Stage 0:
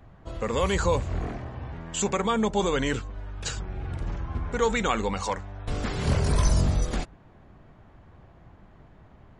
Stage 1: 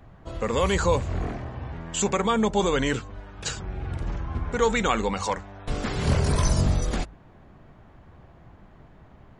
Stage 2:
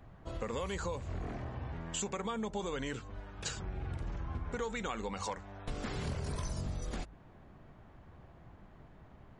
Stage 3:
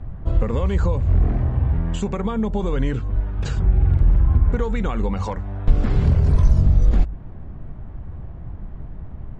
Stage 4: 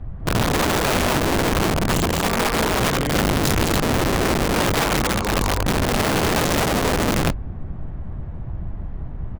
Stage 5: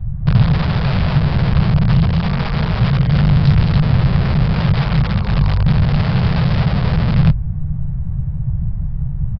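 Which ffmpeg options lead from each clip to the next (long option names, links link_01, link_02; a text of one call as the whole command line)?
ffmpeg -i in.wav -af "bandreject=frequency=50:width_type=h:width=6,bandreject=frequency=100:width_type=h:width=6,volume=2dB" out.wav
ffmpeg -i in.wav -af "acompressor=threshold=-29dB:ratio=6,volume=-5.5dB" out.wav
ffmpeg -i in.wav -af "aemphasis=mode=reproduction:type=riaa,volume=8.5dB" out.wav
ffmpeg -i in.wav -af "aecho=1:1:142.9|201.2|285.7:0.282|1|0.631,aeval=exprs='(mod(5.31*val(0)+1,2)-1)/5.31':channel_layout=same" out.wav
ffmpeg -i in.wav -af "lowshelf=frequency=210:width_type=q:width=3:gain=11.5,aresample=11025,aresample=44100,volume=-4dB" out.wav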